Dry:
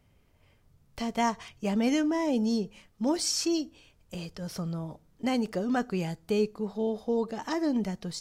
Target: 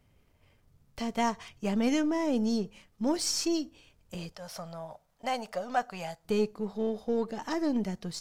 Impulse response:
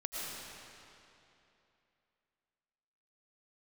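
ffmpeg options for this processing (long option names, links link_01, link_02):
-filter_complex "[0:a]aeval=exprs='if(lt(val(0),0),0.708*val(0),val(0))':channel_layout=same,asettb=1/sr,asplit=3[link_01][link_02][link_03];[link_01]atrim=end=4.324[link_04];[link_02]atrim=start=4.32:end=6.25,asetpts=PTS-STARTPTS,afade=type=in:duration=0.004:curve=qsin,afade=type=out:start_time=1.926:duration=0.004:curve=qsin,lowshelf=frequency=480:width_type=q:width=3:gain=-10[link_05];[link_03]atrim=start=6.246[link_06];[link_04][link_05]acrossfade=duration=0.004:curve1=hsin:curve2=qsin[link_07];[link_07][link_06]acrossfade=duration=0.004:curve1=qsin:curve2=hsin"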